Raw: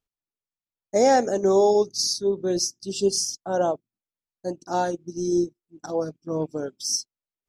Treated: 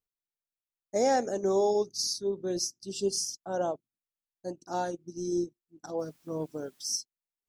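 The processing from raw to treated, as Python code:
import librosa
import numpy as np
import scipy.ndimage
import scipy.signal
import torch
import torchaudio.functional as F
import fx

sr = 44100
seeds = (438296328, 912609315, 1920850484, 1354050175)

y = fx.high_shelf(x, sr, hz=10000.0, db=5.0)
y = fx.quant_dither(y, sr, seeds[0], bits=10, dither='triangular', at=(5.98, 6.97), fade=0.02)
y = y * 10.0 ** (-7.5 / 20.0)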